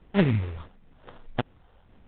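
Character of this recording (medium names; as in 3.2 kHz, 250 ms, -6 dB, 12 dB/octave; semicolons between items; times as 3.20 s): a quantiser's noise floor 12-bit, dither none; phasing stages 4, 1.6 Hz, lowest notch 230–2000 Hz; aliases and images of a low sample rate 2.3 kHz, jitter 20%; µ-law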